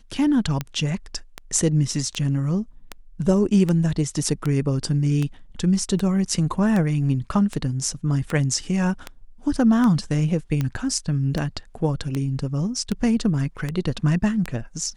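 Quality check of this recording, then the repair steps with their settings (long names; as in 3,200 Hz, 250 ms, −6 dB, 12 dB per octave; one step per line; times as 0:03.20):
scratch tick 78 rpm −12 dBFS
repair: click removal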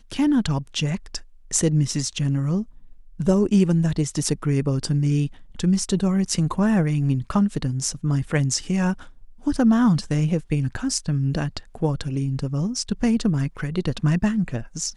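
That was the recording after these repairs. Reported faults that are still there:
none of them is left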